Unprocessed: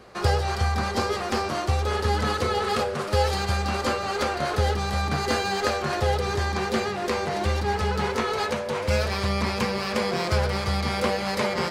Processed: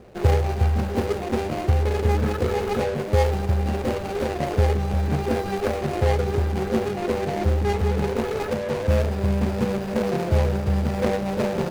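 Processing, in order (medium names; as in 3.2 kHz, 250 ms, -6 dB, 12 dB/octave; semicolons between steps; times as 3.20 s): median filter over 41 samples; trim +5 dB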